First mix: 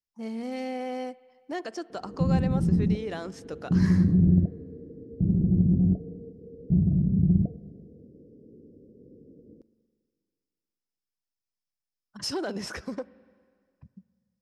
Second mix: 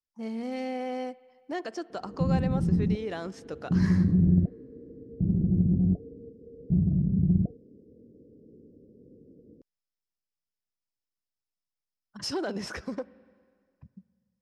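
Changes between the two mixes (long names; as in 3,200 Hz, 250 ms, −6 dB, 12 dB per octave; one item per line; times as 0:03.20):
background: send off
master: add high-shelf EQ 8,600 Hz −7.5 dB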